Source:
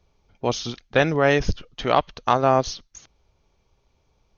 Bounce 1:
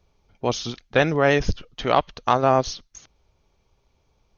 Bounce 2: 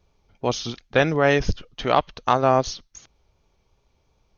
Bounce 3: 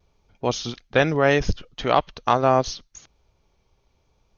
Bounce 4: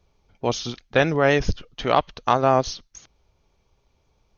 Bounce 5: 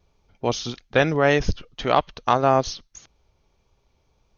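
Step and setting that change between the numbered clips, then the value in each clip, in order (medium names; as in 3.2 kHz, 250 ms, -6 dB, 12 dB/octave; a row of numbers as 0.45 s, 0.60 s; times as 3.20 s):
vibrato, rate: 13 Hz, 2.7 Hz, 0.74 Hz, 7.7 Hz, 1.7 Hz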